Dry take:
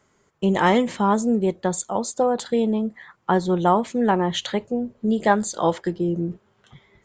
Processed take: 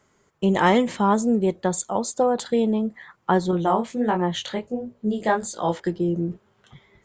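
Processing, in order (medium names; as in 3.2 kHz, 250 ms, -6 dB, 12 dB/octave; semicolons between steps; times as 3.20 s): 3.51–5.80 s: chorus 1.4 Hz, delay 17 ms, depth 5.7 ms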